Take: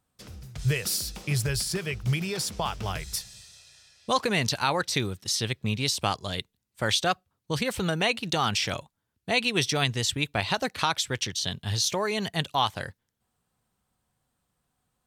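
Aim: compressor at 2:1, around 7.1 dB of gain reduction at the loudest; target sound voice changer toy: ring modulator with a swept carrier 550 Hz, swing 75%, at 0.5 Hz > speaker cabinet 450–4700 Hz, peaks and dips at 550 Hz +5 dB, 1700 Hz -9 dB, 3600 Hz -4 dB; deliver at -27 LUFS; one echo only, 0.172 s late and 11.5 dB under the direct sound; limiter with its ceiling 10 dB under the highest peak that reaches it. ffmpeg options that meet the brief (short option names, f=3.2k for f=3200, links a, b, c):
-af "acompressor=threshold=-33dB:ratio=2,alimiter=level_in=0.5dB:limit=-24dB:level=0:latency=1,volume=-0.5dB,aecho=1:1:172:0.266,aeval=exprs='val(0)*sin(2*PI*550*n/s+550*0.75/0.5*sin(2*PI*0.5*n/s))':c=same,highpass=450,equalizer=f=550:t=q:w=4:g=5,equalizer=f=1.7k:t=q:w=4:g=-9,equalizer=f=3.6k:t=q:w=4:g=-4,lowpass=f=4.7k:w=0.5412,lowpass=f=4.7k:w=1.3066,volume=13.5dB"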